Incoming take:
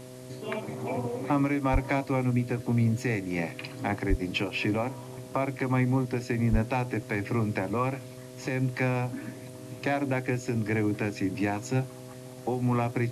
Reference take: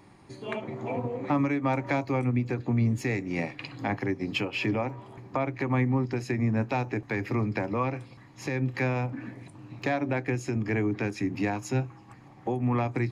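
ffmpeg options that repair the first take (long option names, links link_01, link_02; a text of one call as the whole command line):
ffmpeg -i in.wav -filter_complex "[0:a]bandreject=frequency=127:width_type=h:width=4,bandreject=frequency=254:width_type=h:width=4,bandreject=frequency=381:width_type=h:width=4,bandreject=frequency=508:width_type=h:width=4,bandreject=frequency=635:width_type=h:width=4,asplit=3[link_01][link_02][link_03];[link_01]afade=type=out:start_time=1.72:duration=0.02[link_04];[link_02]highpass=frequency=140:width=0.5412,highpass=frequency=140:width=1.3066,afade=type=in:start_time=1.72:duration=0.02,afade=type=out:start_time=1.84:duration=0.02[link_05];[link_03]afade=type=in:start_time=1.84:duration=0.02[link_06];[link_04][link_05][link_06]amix=inputs=3:normalize=0,asplit=3[link_07][link_08][link_09];[link_07]afade=type=out:start_time=4.09:duration=0.02[link_10];[link_08]highpass=frequency=140:width=0.5412,highpass=frequency=140:width=1.3066,afade=type=in:start_time=4.09:duration=0.02,afade=type=out:start_time=4.21:duration=0.02[link_11];[link_09]afade=type=in:start_time=4.21:duration=0.02[link_12];[link_10][link_11][link_12]amix=inputs=3:normalize=0,asplit=3[link_13][link_14][link_15];[link_13]afade=type=out:start_time=6.51:duration=0.02[link_16];[link_14]highpass=frequency=140:width=0.5412,highpass=frequency=140:width=1.3066,afade=type=in:start_time=6.51:duration=0.02,afade=type=out:start_time=6.63:duration=0.02[link_17];[link_15]afade=type=in:start_time=6.63:duration=0.02[link_18];[link_16][link_17][link_18]amix=inputs=3:normalize=0,afwtdn=0.0022" out.wav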